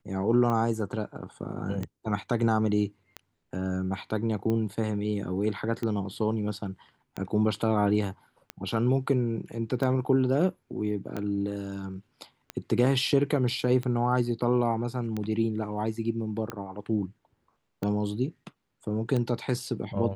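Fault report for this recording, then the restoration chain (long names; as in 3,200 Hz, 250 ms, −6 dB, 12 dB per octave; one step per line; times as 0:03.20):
scratch tick 45 rpm −19 dBFS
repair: click removal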